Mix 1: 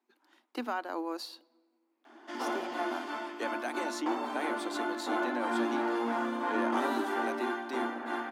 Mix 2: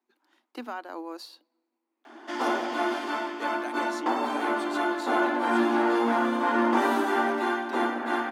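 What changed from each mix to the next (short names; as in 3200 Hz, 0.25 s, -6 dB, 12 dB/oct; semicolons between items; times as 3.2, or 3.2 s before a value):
speech: send -9.0 dB; background +7.5 dB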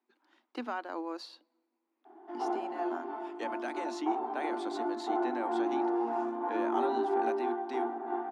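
background: add double band-pass 540 Hz, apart 0.94 oct; master: add air absorption 71 m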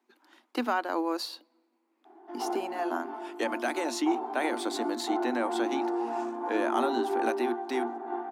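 speech +8.0 dB; master: remove air absorption 71 m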